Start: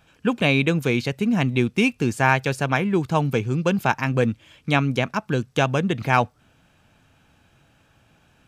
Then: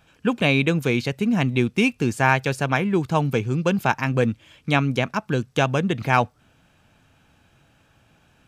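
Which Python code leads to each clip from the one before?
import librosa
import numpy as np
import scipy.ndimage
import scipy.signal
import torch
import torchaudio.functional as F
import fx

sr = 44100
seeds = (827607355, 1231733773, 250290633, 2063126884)

y = x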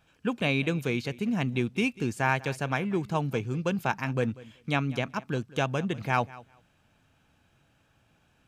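y = fx.echo_feedback(x, sr, ms=192, feedback_pct=16, wet_db=-20.0)
y = y * librosa.db_to_amplitude(-7.5)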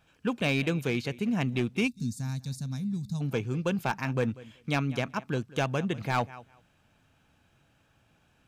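y = fx.spec_box(x, sr, start_s=1.88, length_s=1.33, low_hz=270.0, high_hz=3500.0, gain_db=-23)
y = np.clip(10.0 ** (20.0 / 20.0) * y, -1.0, 1.0) / 10.0 ** (20.0 / 20.0)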